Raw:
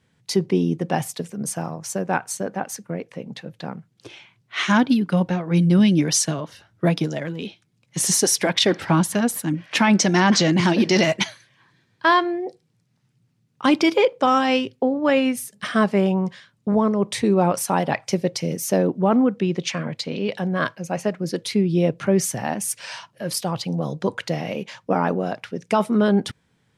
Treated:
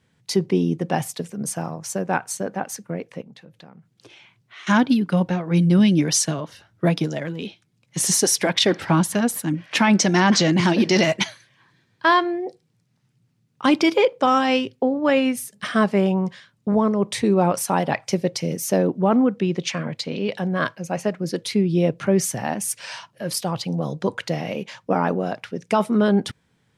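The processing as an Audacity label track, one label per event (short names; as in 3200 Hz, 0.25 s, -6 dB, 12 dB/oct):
3.210000	4.670000	compressor 3:1, threshold -45 dBFS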